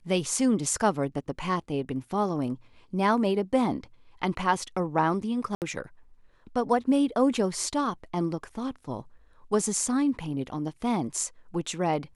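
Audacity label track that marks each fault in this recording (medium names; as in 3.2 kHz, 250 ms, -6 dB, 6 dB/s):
5.550000	5.620000	dropout 68 ms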